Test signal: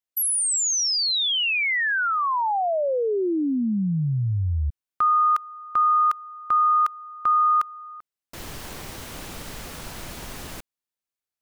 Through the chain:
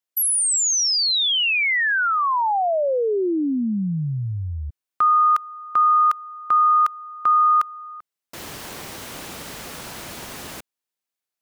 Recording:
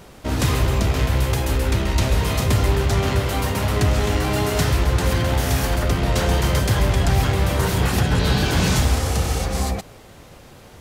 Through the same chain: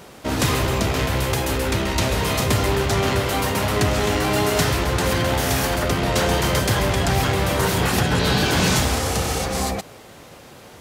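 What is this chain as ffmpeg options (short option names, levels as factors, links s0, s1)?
-af "highpass=f=180:p=1,volume=1.41"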